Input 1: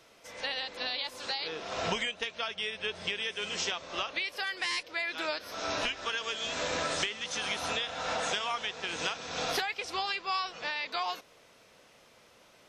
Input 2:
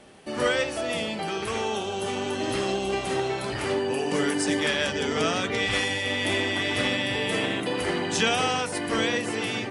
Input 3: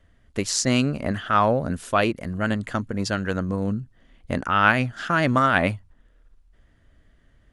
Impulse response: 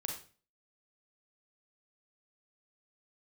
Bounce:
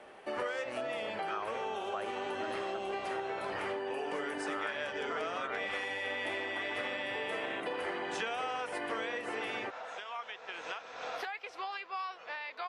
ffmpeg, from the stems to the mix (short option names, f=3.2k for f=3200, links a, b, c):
-filter_complex "[0:a]adelay=1650,volume=-3dB,afade=t=in:st=9.88:d=0.64:silence=0.473151[a];[1:a]volume=2dB[b];[2:a]volume=-10dB[c];[a][b][c]amix=inputs=3:normalize=0,acrossover=split=400 2500:gain=0.126 1 0.178[d][e][f];[d][e][f]amix=inputs=3:normalize=0,acompressor=threshold=-34dB:ratio=6"